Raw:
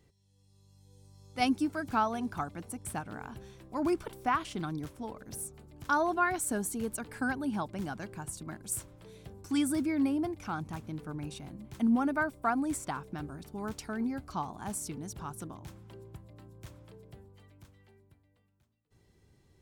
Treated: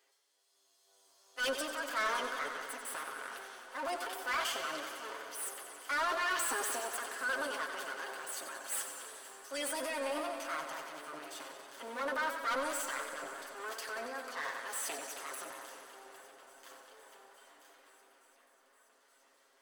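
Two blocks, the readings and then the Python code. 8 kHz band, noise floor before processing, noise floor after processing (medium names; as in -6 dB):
0.0 dB, -68 dBFS, -69 dBFS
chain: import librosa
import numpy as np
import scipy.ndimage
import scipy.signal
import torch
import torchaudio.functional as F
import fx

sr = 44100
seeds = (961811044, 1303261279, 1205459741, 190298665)

p1 = fx.lower_of_two(x, sr, delay_ms=0.63)
p2 = scipy.signal.sosfilt(scipy.signal.butter(4, 530.0, 'highpass', fs=sr, output='sos'), p1)
p3 = p2 + 0.83 * np.pad(p2, (int(7.4 * sr / 1000.0), 0))[:len(p2)]
p4 = fx.transient(p3, sr, attack_db=-3, sustain_db=9)
p5 = 10.0 ** (-28.5 / 20.0) * np.tanh(p4 / 10.0 ** (-28.5 / 20.0))
p6 = p5 + fx.echo_swing(p5, sr, ms=870, ratio=1.5, feedback_pct=71, wet_db=-23.0, dry=0)
y = fx.echo_warbled(p6, sr, ms=92, feedback_pct=79, rate_hz=2.8, cents=71, wet_db=-9.0)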